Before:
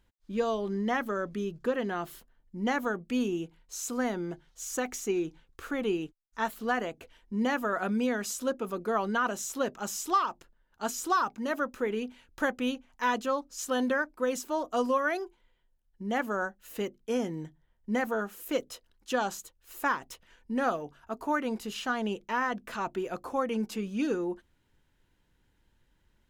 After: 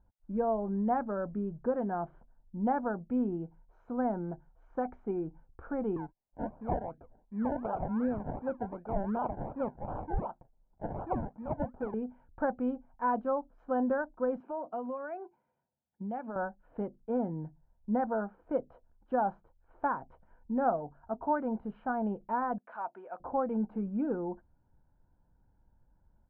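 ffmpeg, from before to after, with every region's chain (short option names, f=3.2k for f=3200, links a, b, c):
-filter_complex "[0:a]asettb=1/sr,asplit=3[a][b][c];[a]atrim=end=5.964[d];[b]atrim=start=5.96:end=11.94,asetpts=PTS-STARTPTS,afade=t=in:d=0.004:c=qsin,afade=t=out:st=5.976:d=0.004:c=qsin,acrossover=split=690[e][f];[e]aeval=exprs='val(0)*(1-0.7/2+0.7/2*cos(2*PI*1.9*n/s))':c=same[g];[f]aeval=exprs='val(0)*(1-0.7/2-0.7/2*cos(2*PI*1.9*n/s))':c=same[h];[g][h]amix=inputs=2:normalize=0,acrusher=samples=29:mix=1:aa=0.000001:lfo=1:lforange=17.4:lforate=2.7[i];[c]atrim=start=11.936[j];[d][i]acrossfade=d=0.004:c1=hsin:c2=qsin[k];[k][j]acrossfade=d=0.004:c1=qsin:c2=hsin,asettb=1/sr,asplit=3[l][m][n];[l]atrim=end=14.404[o];[m]atrim=start=14.4:end=16.36,asetpts=PTS-STARTPTS,afade=t=in:d=0.004:c=qsin,afade=t=out:st=1.956:d=0.004:c=qsin,highpass=f=120:w=0.5412,highpass=f=120:w=1.3066,equalizer=f=2.6k:w=3:g=14,acompressor=threshold=-35dB:ratio=3:attack=3.2:release=140:knee=1:detection=peak[p];[n]atrim=start=16.356[q];[o][p]acrossfade=d=0.004:c1=hsin:c2=qsin[r];[r][q]acrossfade=d=0.004:c1=qsin:c2=hsin,asettb=1/sr,asplit=3[s][t][u];[s]atrim=end=22.584[v];[t]atrim=start=22.58:end=23.2,asetpts=PTS-STARTPTS,afade=t=in:d=0.004:c=qsin,afade=t=out:st=0.616:d=0.004:c=qsin,highpass=f=840:p=1,aemphasis=mode=production:type=riaa[w];[u]atrim=start=23.196[x];[v][w]acrossfade=d=0.004:c1=hsin:c2=qsin[y];[y][x]acrossfade=d=0.004:c1=qsin:c2=hsin,lowpass=f=1.1k:w=0.5412,lowpass=f=1.1k:w=1.3066,aecho=1:1:1.3:0.47"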